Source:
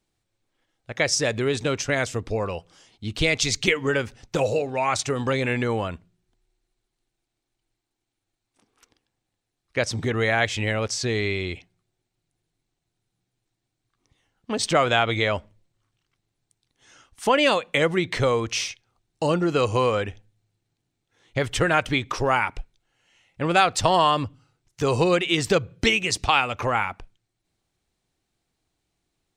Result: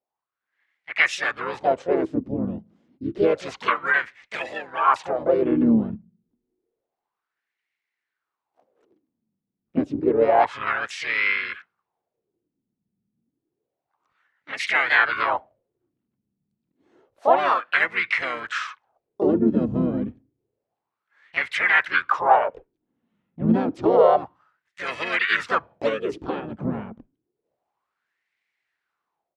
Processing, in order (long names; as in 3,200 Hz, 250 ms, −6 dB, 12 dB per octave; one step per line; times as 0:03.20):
pitch-shifted copies added −12 semitones −7 dB, −7 semitones −4 dB, +4 semitones −3 dB
LFO wah 0.29 Hz 200–2,100 Hz, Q 5.2
automatic gain control gain up to 10 dB